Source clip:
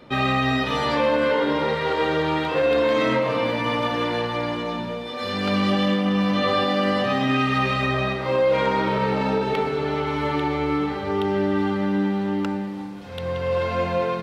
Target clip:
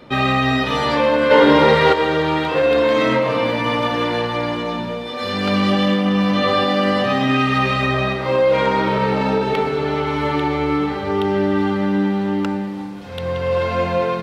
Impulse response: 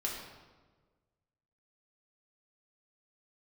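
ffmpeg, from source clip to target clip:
-filter_complex "[0:a]asplit=3[a][b][c];[a]afade=t=out:st=1.3:d=0.02[d];[b]acontrast=77,afade=t=in:st=1.3:d=0.02,afade=t=out:st=1.92:d=0.02[e];[c]afade=t=in:st=1.92:d=0.02[f];[d][e][f]amix=inputs=3:normalize=0,volume=4dB"

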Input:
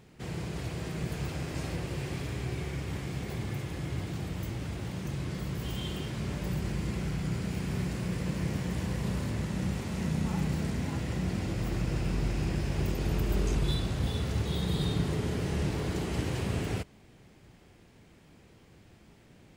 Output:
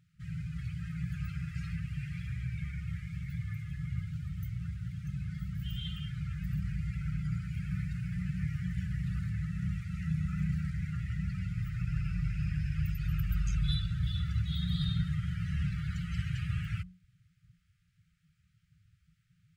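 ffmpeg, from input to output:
-af "bandreject=f=45.43:t=h:w=4,bandreject=f=90.86:t=h:w=4,bandreject=f=136.29:t=h:w=4,bandreject=f=181.72:t=h:w=4,bandreject=f=227.15:t=h:w=4,bandreject=f=272.58:t=h:w=4,bandreject=f=318.01:t=h:w=4,bandreject=f=363.44:t=h:w=4,bandreject=f=408.87:t=h:w=4,bandreject=f=454.3:t=h:w=4,bandreject=f=499.73:t=h:w=4,bandreject=f=545.16:t=h:w=4,bandreject=f=590.59:t=h:w=4,bandreject=f=636.02:t=h:w=4,bandreject=f=681.45:t=h:w=4,bandreject=f=726.88:t=h:w=4,bandreject=f=772.31:t=h:w=4,bandreject=f=817.74:t=h:w=4,afftdn=nr=16:nf=-42,afftfilt=real='re*(1-between(b*sr/4096,190,1200))':imag='im*(1-between(b*sr/4096,190,1200))':win_size=4096:overlap=0.75"

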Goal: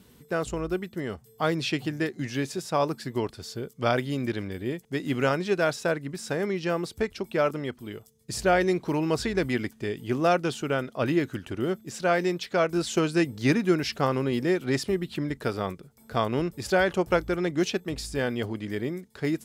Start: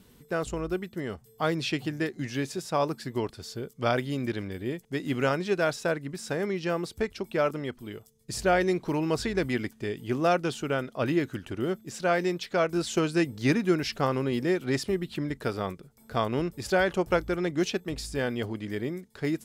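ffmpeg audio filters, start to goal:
-af "highpass=40,volume=1.5dB"

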